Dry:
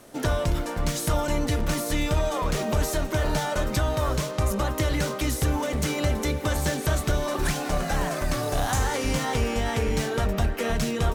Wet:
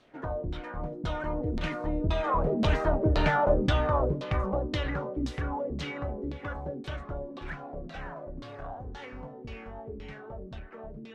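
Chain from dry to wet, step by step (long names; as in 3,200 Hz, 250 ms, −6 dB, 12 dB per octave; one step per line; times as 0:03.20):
source passing by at 0:03.21, 12 m/s, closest 9.9 metres
auto-filter low-pass saw down 1.9 Hz 260–4,100 Hz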